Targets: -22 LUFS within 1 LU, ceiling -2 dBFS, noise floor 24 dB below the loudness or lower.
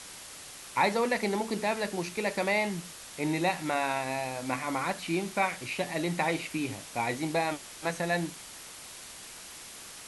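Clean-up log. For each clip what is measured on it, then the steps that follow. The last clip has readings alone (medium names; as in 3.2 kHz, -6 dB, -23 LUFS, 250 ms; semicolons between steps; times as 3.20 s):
noise floor -46 dBFS; noise floor target -55 dBFS; loudness -30.5 LUFS; peak level -13.5 dBFS; loudness target -22.0 LUFS
-> noise print and reduce 9 dB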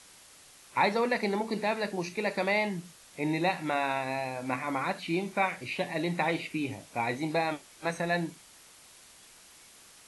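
noise floor -55 dBFS; loudness -31.0 LUFS; peak level -13.5 dBFS; loudness target -22.0 LUFS
-> trim +9 dB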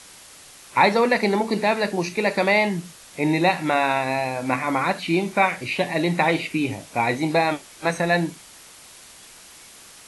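loudness -22.0 LUFS; peak level -4.5 dBFS; noise floor -46 dBFS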